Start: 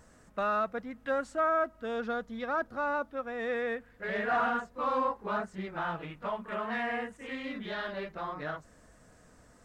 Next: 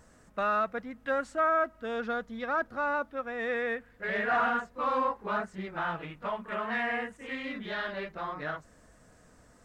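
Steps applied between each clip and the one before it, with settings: dynamic bell 2 kHz, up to +4 dB, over -45 dBFS, Q 1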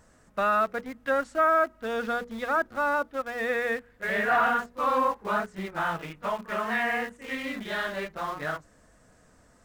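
hum notches 60/120/180/240/300/360/420/480 Hz; in parallel at -4.5 dB: small samples zeroed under -38.5 dBFS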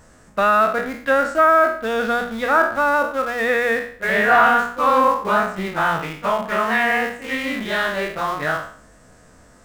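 spectral sustain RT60 0.51 s; trim +8 dB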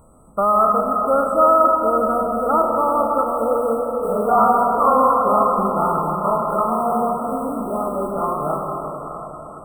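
brick-wall FIR band-stop 1.4–7.8 kHz; plate-style reverb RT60 4.6 s, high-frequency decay 0.4×, pre-delay 115 ms, DRR 2 dB

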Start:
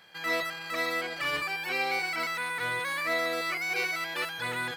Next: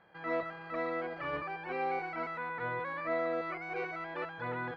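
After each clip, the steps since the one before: low-pass 1.1 kHz 12 dB/octave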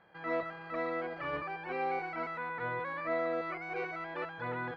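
no audible change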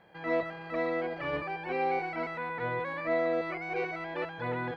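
peaking EQ 1.3 kHz -7.5 dB 0.71 oct; trim +5.5 dB

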